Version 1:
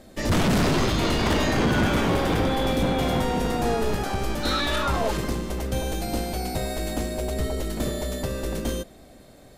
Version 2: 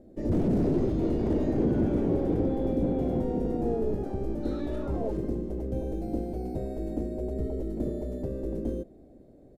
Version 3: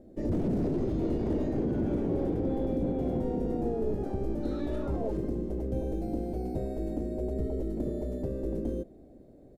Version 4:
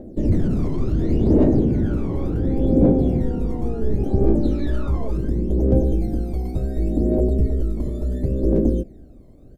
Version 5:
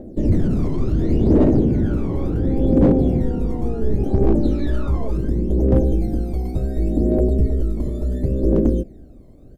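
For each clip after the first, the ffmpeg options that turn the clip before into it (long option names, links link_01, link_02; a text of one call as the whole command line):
ffmpeg -i in.wav -af "firequalizer=gain_entry='entry(170,0);entry(330,6);entry(1100,-18);entry(1900,-19);entry(3200,-24);entry(5600,-22)':delay=0.05:min_phase=1,volume=-5dB" out.wav
ffmpeg -i in.wav -af "alimiter=limit=-22dB:level=0:latency=1:release=121" out.wav
ffmpeg -i in.wav -af "aphaser=in_gain=1:out_gain=1:delay=1:decay=0.72:speed=0.7:type=triangular,volume=5dB" out.wav
ffmpeg -i in.wav -af "asoftclip=type=hard:threshold=-9dB,volume=1.5dB" out.wav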